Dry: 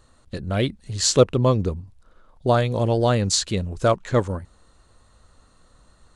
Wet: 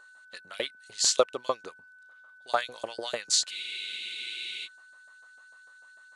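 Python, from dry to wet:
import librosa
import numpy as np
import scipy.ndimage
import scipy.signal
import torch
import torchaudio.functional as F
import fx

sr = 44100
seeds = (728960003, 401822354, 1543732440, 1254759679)

y = fx.filter_lfo_highpass(x, sr, shape='saw_up', hz=6.7, low_hz=550.0, high_hz=6100.0, q=1.2)
y = y + 10.0 ** (-48.0 / 20.0) * np.sin(2.0 * np.pi * 1500.0 * np.arange(len(y)) / sr)
y = fx.spec_freeze(y, sr, seeds[0], at_s=3.52, hold_s=1.13)
y = F.gain(torch.from_numpy(y), -3.5).numpy()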